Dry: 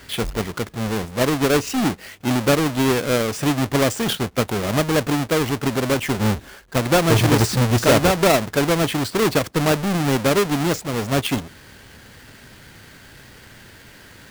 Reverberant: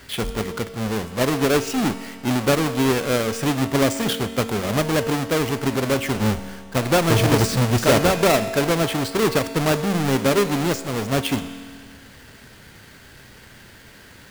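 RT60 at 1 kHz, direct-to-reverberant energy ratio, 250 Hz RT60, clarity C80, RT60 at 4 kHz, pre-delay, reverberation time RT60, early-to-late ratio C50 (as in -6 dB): 2.0 s, 9.5 dB, 2.0 s, 12.0 dB, 1.9 s, 4 ms, 2.0 s, 11.0 dB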